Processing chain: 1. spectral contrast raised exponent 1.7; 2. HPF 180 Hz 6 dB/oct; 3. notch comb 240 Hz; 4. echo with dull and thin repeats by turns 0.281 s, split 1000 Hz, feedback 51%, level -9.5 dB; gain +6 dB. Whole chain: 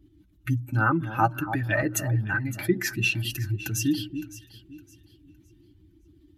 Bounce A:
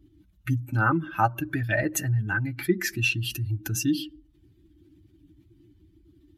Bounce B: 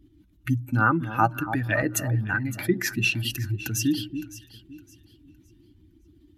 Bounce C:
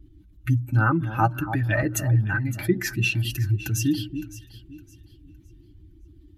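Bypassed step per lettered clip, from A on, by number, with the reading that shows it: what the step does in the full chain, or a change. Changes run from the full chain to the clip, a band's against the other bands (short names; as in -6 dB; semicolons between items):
4, echo-to-direct -12.5 dB to none; 3, momentary loudness spread change +1 LU; 2, 125 Hz band +5.0 dB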